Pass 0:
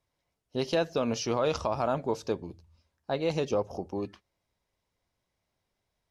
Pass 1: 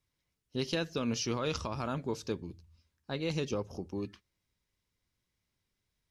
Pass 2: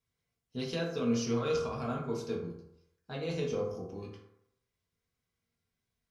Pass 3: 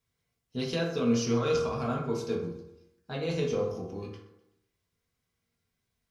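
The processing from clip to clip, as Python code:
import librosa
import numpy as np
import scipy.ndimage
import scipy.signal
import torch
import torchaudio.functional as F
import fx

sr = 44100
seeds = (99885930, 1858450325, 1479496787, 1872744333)

y1 = fx.peak_eq(x, sr, hz=690.0, db=-13.0, octaves=1.2)
y2 = fx.rev_fdn(y1, sr, rt60_s=0.78, lf_ratio=0.8, hf_ratio=0.45, size_ms=13.0, drr_db=-4.5)
y2 = y2 * librosa.db_to_amplitude(-7.0)
y3 = fx.echo_feedback(y2, sr, ms=126, feedback_pct=51, wet_db=-20.0)
y3 = y3 * librosa.db_to_amplitude(4.0)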